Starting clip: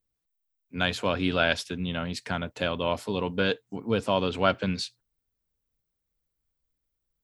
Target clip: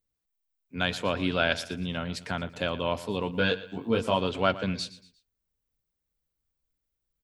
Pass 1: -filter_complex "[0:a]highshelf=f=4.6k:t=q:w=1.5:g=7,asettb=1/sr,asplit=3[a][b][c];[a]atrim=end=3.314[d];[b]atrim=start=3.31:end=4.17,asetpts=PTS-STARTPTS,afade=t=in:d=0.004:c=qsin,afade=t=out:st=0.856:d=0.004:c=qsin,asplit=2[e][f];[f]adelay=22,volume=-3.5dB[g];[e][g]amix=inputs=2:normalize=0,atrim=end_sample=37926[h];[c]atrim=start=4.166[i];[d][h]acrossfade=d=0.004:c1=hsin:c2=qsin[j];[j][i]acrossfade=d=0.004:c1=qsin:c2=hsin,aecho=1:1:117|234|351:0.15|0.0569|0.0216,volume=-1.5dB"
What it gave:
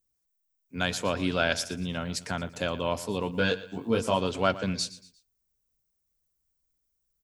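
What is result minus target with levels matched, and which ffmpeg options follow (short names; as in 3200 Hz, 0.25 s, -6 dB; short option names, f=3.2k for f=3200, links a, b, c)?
8000 Hz band +8.5 dB
-filter_complex "[0:a]asettb=1/sr,asplit=3[a][b][c];[a]atrim=end=3.314[d];[b]atrim=start=3.31:end=4.17,asetpts=PTS-STARTPTS,afade=t=in:d=0.004:c=qsin,afade=t=out:st=0.856:d=0.004:c=qsin,asplit=2[e][f];[f]adelay=22,volume=-3.5dB[g];[e][g]amix=inputs=2:normalize=0,atrim=end_sample=37926[h];[c]atrim=start=4.166[i];[d][h]acrossfade=d=0.004:c1=hsin:c2=qsin[j];[j][i]acrossfade=d=0.004:c1=qsin:c2=hsin,aecho=1:1:117|234|351:0.15|0.0569|0.0216,volume=-1.5dB"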